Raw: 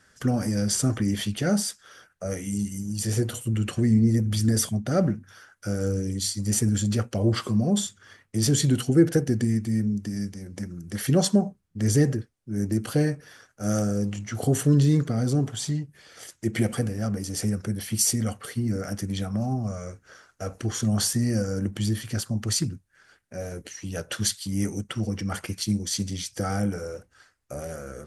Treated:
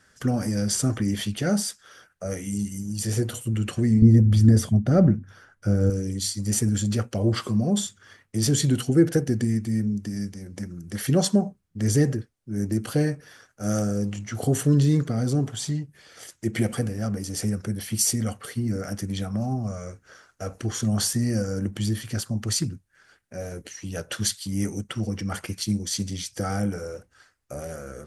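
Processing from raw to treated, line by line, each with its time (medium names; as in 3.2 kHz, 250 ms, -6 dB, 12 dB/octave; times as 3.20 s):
4.02–5.90 s: tilt EQ -2.5 dB/octave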